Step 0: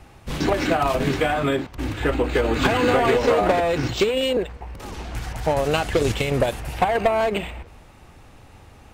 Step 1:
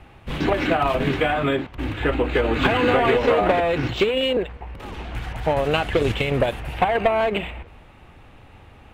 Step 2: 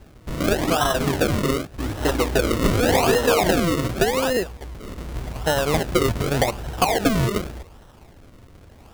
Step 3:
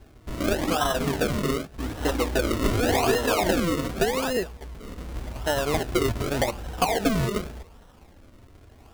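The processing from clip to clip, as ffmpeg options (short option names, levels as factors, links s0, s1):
-af "highshelf=f=4100:t=q:w=1.5:g=-8.5"
-af "acrusher=samples=37:mix=1:aa=0.000001:lfo=1:lforange=37:lforate=0.86"
-af "flanger=delay=2.8:depth=1.9:regen=-53:speed=0.34:shape=sinusoidal"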